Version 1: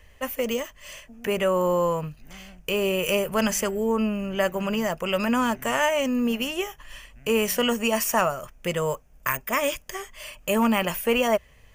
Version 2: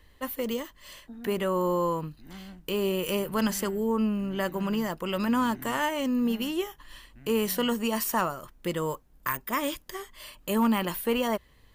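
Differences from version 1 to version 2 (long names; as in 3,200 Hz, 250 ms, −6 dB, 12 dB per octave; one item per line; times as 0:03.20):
first voice −5.0 dB
second voice: remove moving average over 25 samples
master: add thirty-one-band graphic EQ 200 Hz +4 dB, 315 Hz +12 dB, 630 Hz −6 dB, 1,000 Hz +4 dB, 2,500 Hz −7 dB, 4,000 Hz +11 dB, 6,300 Hz −6 dB, 12,500 Hz +5 dB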